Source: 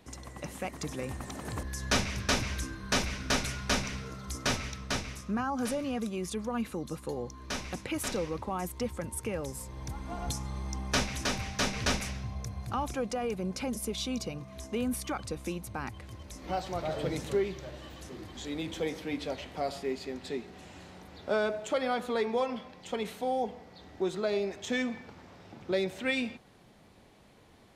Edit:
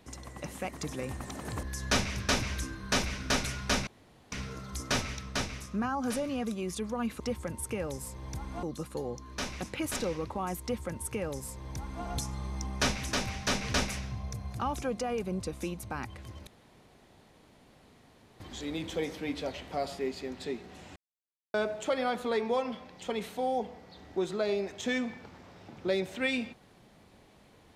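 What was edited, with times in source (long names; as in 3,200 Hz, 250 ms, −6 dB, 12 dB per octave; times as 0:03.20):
0:03.87: splice in room tone 0.45 s
0:08.74–0:10.17: duplicate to 0:06.75
0:13.52–0:15.24: remove
0:16.31–0:18.24: fill with room tone
0:20.80–0:21.38: silence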